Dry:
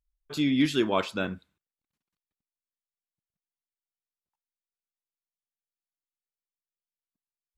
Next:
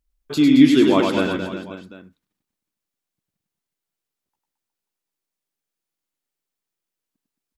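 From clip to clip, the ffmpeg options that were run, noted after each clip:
ffmpeg -i in.wav -filter_complex "[0:a]equalizer=frequency=300:width_type=o:width=1.2:gain=6.5,asplit=2[link_01][link_02];[link_02]acompressor=threshold=-27dB:ratio=6,volume=-2dB[link_03];[link_01][link_03]amix=inputs=2:normalize=0,aecho=1:1:100|220|364|536.8|744.2:0.631|0.398|0.251|0.158|0.1,volume=2dB" out.wav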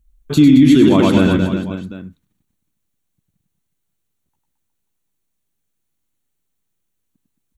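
ffmpeg -i in.wav -af "bass=frequency=250:gain=14,treble=frequency=4000:gain=3,bandreject=frequency=5000:width=5,alimiter=limit=-6dB:level=0:latency=1:release=55,volume=4dB" out.wav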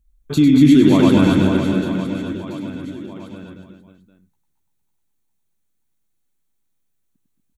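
ffmpeg -i in.wav -filter_complex "[0:a]bandreject=frequency=2900:width=20,asplit=2[link_01][link_02];[link_02]aecho=0:1:240|552|957.6|1485|2170:0.631|0.398|0.251|0.158|0.1[link_03];[link_01][link_03]amix=inputs=2:normalize=0,volume=-3.5dB" out.wav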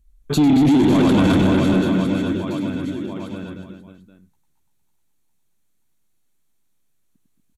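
ffmpeg -i in.wav -af "alimiter=limit=-9dB:level=0:latency=1:release=11,asoftclip=type=tanh:threshold=-14.5dB,aresample=32000,aresample=44100,volume=4.5dB" out.wav

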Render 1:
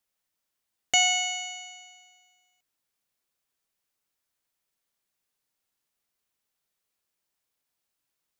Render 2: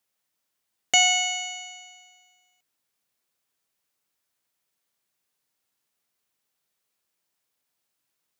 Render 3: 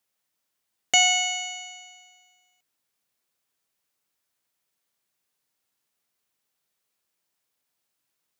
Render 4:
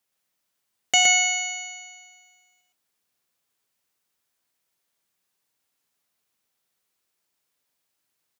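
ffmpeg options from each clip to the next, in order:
ffmpeg -i in.wav -af "highpass=83,volume=3dB" out.wav
ffmpeg -i in.wav -af anull out.wav
ffmpeg -i in.wav -af "aecho=1:1:117:0.708" out.wav

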